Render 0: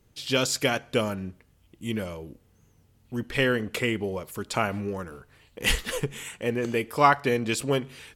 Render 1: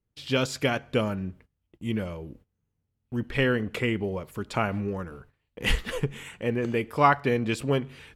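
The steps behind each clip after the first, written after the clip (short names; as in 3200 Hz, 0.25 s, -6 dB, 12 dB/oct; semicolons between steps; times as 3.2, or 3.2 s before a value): gate -52 dBFS, range -20 dB; tone controls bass +4 dB, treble -9 dB; gain -1 dB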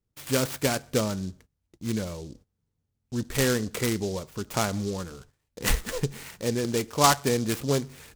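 noise-modulated delay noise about 5100 Hz, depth 0.079 ms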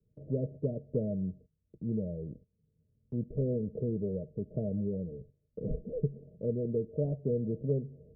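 de-esser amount 55%; rippled Chebyshev low-pass 640 Hz, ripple 9 dB; three-band squash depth 40%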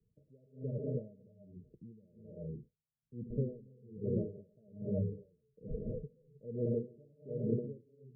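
non-linear reverb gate 0.33 s rising, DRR 0.5 dB; spectral gate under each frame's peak -20 dB strong; dB-linear tremolo 1.2 Hz, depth 31 dB; gain -1.5 dB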